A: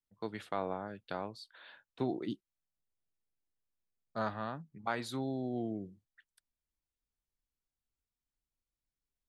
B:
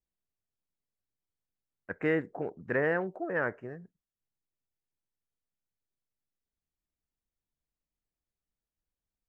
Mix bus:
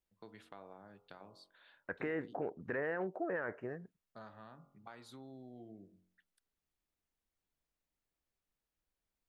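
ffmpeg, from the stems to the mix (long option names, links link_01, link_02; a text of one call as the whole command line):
ffmpeg -i stem1.wav -i stem2.wav -filter_complex "[0:a]bandreject=frequency=45.7:width_type=h:width=4,bandreject=frequency=91.4:width_type=h:width=4,bandreject=frequency=137.1:width_type=h:width=4,bandreject=frequency=182.8:width_type=h:width=4,bandreject=frequency=228.5:width_type=h:width=4,bandreject=frequency=274.2:width_type=h:width=4,bandreject=frequency=319.9:width_type=h:width=4,bandreject=frequency=365.6:width_type=h:width=4,bandreject=frequency=411.3:width_type=h:width=4,bandreject=frequency=457:width_type=h:width=4,bandreject=frequency=502.7:width_type=h:width=4,bandreject=frequency=548.4:width_type=h:width=4,bandreject=frequency=594.1:width_type=h:width=4,bandreject=frequency=639.8:width_type=h:width=4,bandreject=frequency=685.5:width_type=h:width=4,bandreject=frequency=731.2:width_type=h:width=4,bandreject=frequency=776.9:width_type=h:width=4,bandreject=frequency=822.6:width_type=h:width=4,bandreject=frequency=868.3:width_type=h:width=4,bandreject=frequency=914:width_type=h:width=4,bandreject=frequency=959.7:width_type=h:width=4,bandreject=frequency=1005.4:width_type=h:width=4,bandreject=frequency=1051.1:width_type=h:width=4,bandreject=frequency=1096.8:width_type=h:width=4,bandreject=frequency=1142.5:width_type=h:width=4,bandreject=frequency=1188.2:width_type=h:width=4,bandreject=frequency=1233.9:width_type=h:width=4,bandreject=frequency=1279.6:width_type=h:width=4,bandreject=frequency=1325.3:width_type=h:width=4,bandreject=frequency=1371:width_type=h:width=4,bandreject=frequency=1416.7:width_type=h:width=4,acompressor=threshold=-42dB:ratio=2.5,volume=-9.5dB[link_01];[1:a]bass=frequency=250:gain=-5,treble=frequency=4000:gain=-5,alimiter=level_in=3dB:limit=-24dB:level=0:latency=1:release=25,volume=-3dB,acontrast=84,volume=-3.5dB[link_02];[link_01][link_02]amix=inputs=2:normalize=0,acompressor=threshold=-43dB:ratio=1.5" out.wav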